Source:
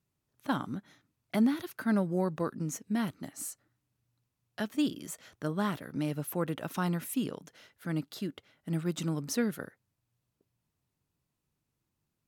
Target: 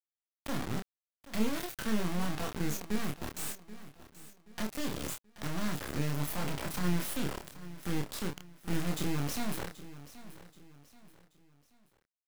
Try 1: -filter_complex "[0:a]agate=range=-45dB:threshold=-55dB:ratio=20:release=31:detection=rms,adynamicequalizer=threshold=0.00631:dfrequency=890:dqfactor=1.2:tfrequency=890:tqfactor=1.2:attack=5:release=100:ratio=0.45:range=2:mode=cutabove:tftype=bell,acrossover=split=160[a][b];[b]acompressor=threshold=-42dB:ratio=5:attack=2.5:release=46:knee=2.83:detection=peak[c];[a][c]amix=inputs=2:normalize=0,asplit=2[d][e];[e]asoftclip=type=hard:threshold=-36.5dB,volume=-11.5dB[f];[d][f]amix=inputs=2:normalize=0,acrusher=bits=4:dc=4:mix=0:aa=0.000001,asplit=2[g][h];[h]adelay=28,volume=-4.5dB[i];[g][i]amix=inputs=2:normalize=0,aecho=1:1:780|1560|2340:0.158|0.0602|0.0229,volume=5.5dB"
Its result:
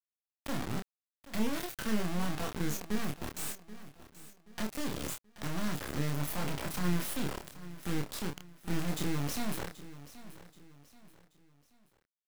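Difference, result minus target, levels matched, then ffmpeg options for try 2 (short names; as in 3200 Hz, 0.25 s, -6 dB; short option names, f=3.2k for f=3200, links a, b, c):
hard clip: distortion +28 dB
-filter_complex "[0:a]agate=range=-45dB:threshold=-55dB:ratio=20:release=31:detection=rms,adynamicequalizer=threshold=0.00631:dfrequency=890:dqfactor=1.2:tfrequency=890:tqfactor=1.2:attack=5:release=100:ratio=0.45:range=2:mode=cutabove:tftype=bell,acrossover=split=160[a][b];[b]acompressor=threshold=-42dB:ratio=5:attack=2.5:release=46:knee=2.83:detection=peak[c];[a][c]amix=inputs=2:normalize=0,asplit=2[d][e];[e]asoftclip=type=hard:threshold=-29.5dB,volume=-11.5dB[f];[d][f]amix=inputs=2:normalize=0,acrusher=bits=4:dc=4:mix=0:aa=0.000001,asplit=2[g][h];[h]adelay=28,volume=-4.5dB[i];[g][i]amix=inputs=2:normalize=0,aecho=1:1:780|1560|2340:0.158|0.0602|0.0229,volume=5.5dB"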